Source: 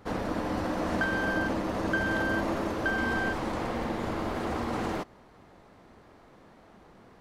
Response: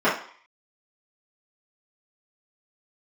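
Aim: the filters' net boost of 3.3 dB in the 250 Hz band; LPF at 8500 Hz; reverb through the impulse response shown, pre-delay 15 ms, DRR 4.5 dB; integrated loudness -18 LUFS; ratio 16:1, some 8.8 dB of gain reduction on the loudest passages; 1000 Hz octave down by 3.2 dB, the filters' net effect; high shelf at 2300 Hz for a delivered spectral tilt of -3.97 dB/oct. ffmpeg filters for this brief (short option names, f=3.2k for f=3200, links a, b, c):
-filter_complex "[0:a]lowpass=8.5k,equalizer=f=250:t=o:g=4.5,equalizer=f=1k:t=o:g=-6,highshelf=f=2.3k:g=7.5,acompressor=threshold=-32dB:ratio=16,asplit=2[a][b];[1:a]atrim=start_sample=2205,adelay=15[c];[b][c]afir=irnorm=-1:irlink=0,volume=-24dB[d];[a][d]amix=inputs=2:normalize=0,volume=16dB"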